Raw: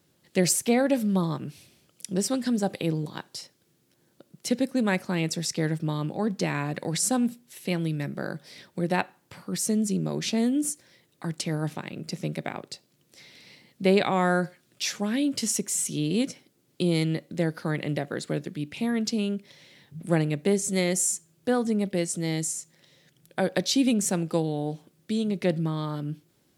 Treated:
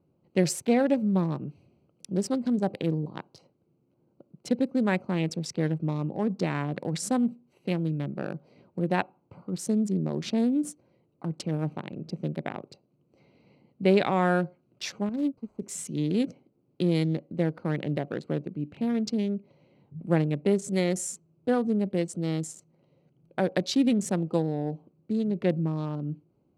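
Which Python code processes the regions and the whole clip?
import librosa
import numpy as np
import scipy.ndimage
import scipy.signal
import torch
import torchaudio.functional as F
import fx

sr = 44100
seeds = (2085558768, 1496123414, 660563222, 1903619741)

y = fx.chain(x, sr, fx.median_filter(points=15),
    fx.high_shelf(hz=3600.0, db=6.0),
    fx.upward_expand(threshold_db=-35.0, expansion=2.5), at=(15.09, 15.62))
y = fx.wiener(y, sr, points=25)
y = fx.lowpass(y, sr, hz=3200.0, slope=6)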